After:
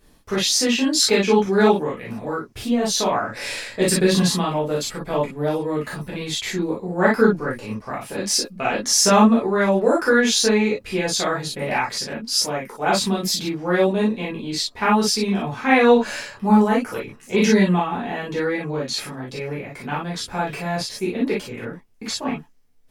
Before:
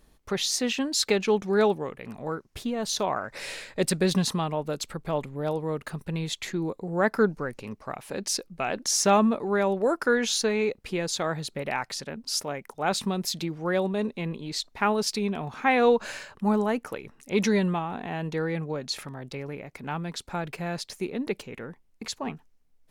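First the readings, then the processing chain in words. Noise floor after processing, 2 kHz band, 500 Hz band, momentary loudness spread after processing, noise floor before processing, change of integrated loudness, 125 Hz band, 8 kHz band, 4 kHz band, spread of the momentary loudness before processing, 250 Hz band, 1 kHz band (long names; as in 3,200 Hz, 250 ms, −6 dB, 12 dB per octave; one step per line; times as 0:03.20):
−48 dBFS, +7.5 dB, +6.0 dB, 13 LU, −61 dBFS, +7.0 dB, +5.5 dB, +8.0 dB, +8.0 dB, 12 LU, +8.0 dB, +6.5 dB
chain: reverb whose tail is shaped and stops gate 80 ms flat, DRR −6.5 dB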